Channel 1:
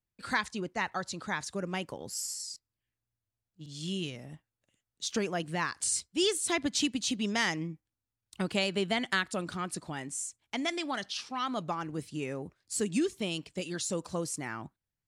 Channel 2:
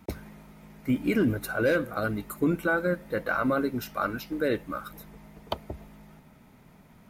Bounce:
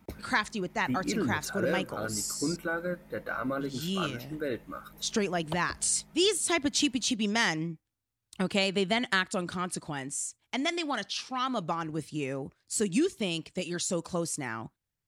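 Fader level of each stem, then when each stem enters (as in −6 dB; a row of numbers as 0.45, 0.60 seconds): +2.5, −6.5 decibels; 0.00, 0.00 seconds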